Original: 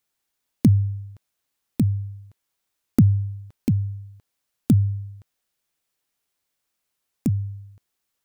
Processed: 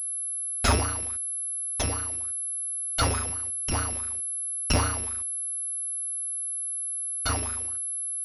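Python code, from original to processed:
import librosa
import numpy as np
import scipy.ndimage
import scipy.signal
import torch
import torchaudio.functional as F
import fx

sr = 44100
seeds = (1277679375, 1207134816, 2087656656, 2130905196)

y = fx.bit_reversed(x, sr, seeds[0], block=256)
y = fx.wow_flutter(y, sr, seeds[1], rate_hz=2.1, depth_cents=110.0)
y = fx.comb_fb(y, sr, f0_hz=98.0, decay_s=1.0, harmonics='all', damping=0.0, mix_pct=30, at=(1.82, 3.74))
y = fx.pwm(y, sr, carrier_hz=11000.0)
y = y * 10.0 ** (-2.0 / 20.0)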